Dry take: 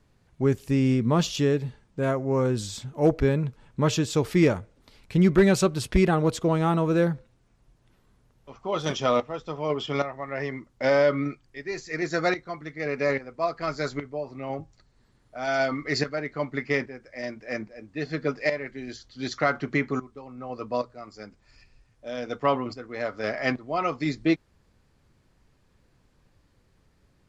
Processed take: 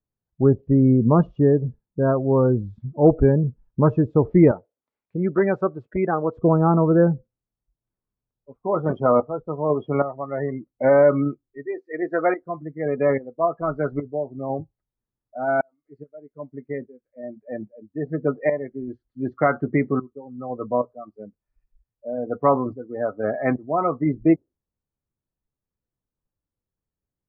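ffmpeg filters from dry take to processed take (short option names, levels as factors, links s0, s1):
-filter_complex "[0:a]asettb=1/sr,asplit=3[s0][s1][s2];[s0]atrim=end=4.514[s3];[s1]atrim=start=4.51:end=6.37,asetpts=PTS-STARTPTS,afade=t=in:d=0.004:c=qsin,afade=t=out:st=1.856:d=0.004:c=qsin,highpass=f=670:p=1[s4];[s2]atrim=start=6.366[s5];[s3][s4]acrossfade=d=0.004:c1=hsin:c2=qsin[s6];[s6][s5]acrossfade=d=0.004:c1=qsin:c2=hsin,asettb=1/sr,asplit=3[s7][s8][s9];[s7]atrim=end=11.664[s10];[s8]atrim=start=11.66:end=12.42,asetpts=PTS-STARTPTS,afade=t=in:d=0.004:c=qsin,afade=t=out:st=0.756:d=0.004:c=qsin,highpass=320[s11];[s9]atrim=start=12.416[s12];[s10][s11]acrossfade=d=0.004:c1=hsin:c2=qsin[s13];[s13][s12]acrossfade=d=0.004:c1=qsin:c2=hsin,asplit=2[s14][s15];[s14]atrim=end=15.61,asetpts=PTS-STARTPTS,afade=t=out:st=15.606:d=0.004:c=hsin[s16];[s15]atrim=start=15.61,asetpts=PTS-STARTPTS,afade=t=in:d=2.98[s17];[s16][s17]concat=n=2:v=0:a=1,lowpass=1300,afftdn=nr=31:nf=-34,volume=2"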